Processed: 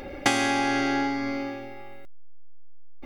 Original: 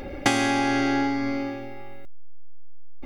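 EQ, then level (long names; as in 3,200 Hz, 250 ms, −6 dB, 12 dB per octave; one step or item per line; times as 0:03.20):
low-shelf EQ 290 Hz −6 dB
0.0 dB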